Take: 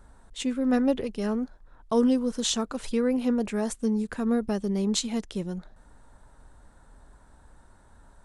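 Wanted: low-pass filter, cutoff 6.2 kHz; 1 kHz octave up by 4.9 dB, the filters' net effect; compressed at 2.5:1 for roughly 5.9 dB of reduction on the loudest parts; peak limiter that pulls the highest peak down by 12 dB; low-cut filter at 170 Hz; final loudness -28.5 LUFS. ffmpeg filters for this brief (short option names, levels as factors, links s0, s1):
-af "highpass=170,lowpass=6200,equalizer=f=1000:t=o:g=6.5,acompressor=threshold=0.0447:ratio=2.5,volume=2.24,alimiter=limit=0.1:level=0:latency=1"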